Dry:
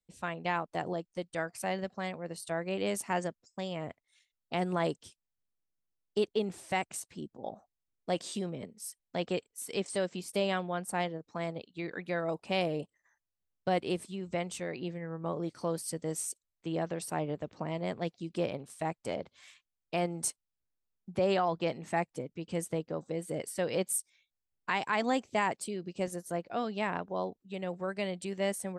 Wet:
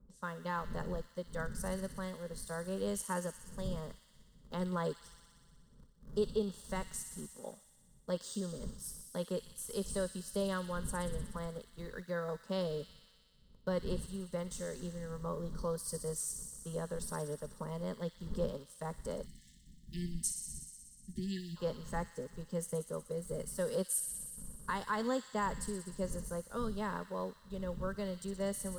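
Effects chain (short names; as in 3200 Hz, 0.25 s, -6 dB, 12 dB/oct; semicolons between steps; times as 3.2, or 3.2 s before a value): wind noise 110 Hz -43 dBFS; in parallel at -5.5 dB: sample gate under -42.5 dBFS; on the sum: fixed phaser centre 480 Hz, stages 8; thin delay 61 ms, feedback 81%, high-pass 2700 Hz, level -7 dB; spectral delete 19.26–21.57, 370–1700 Hz; gain -5.5 dB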